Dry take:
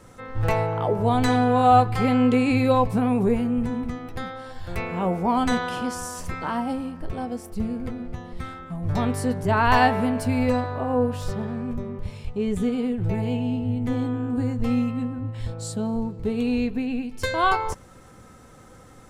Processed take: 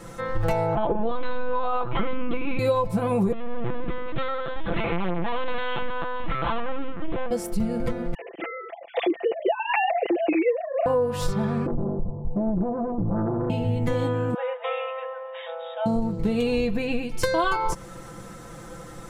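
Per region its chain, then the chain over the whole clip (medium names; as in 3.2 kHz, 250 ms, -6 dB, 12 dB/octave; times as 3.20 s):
0.75–2.59 s: comb 4.8 ms, depth 53% + LPC vocoder at 8 kHz pitch kept
3.32–7.31 s: hard clipper -28.5 dBFS + feedback delay 297 ms, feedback 35%, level -19 dB + LPC vocoder at 8 kHz pitch kept
8.14–10.86 s: formants replaced by sine waves + high-pass 230 Hz 6 dB/octave + high-order bell 1.2 kHz -15 dB 1.1 oct
11.66–13.50 s: steep low-pass 900 Hz 72 dB/octave + compression, threshold -26 dBFS + loudspeaker Doppler distortion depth 0.91 ms
14.34–15.86 s: brick-wall FIR band-pass 490–3800 Hz + doubling 17 ms -13 dB
whole clip: dynamic bell 2 kHz, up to -4 dB, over -37 dBFS, Q 1.2; comb 5.9 ms, depth 76%; compression 10:1, threshold -25 dBFS; trim +6 dB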